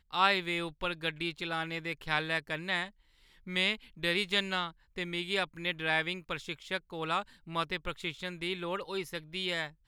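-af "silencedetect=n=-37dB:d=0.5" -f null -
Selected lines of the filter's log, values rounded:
silence_start: 2.86
silence_end: 3.48 | silence_duration: 0.61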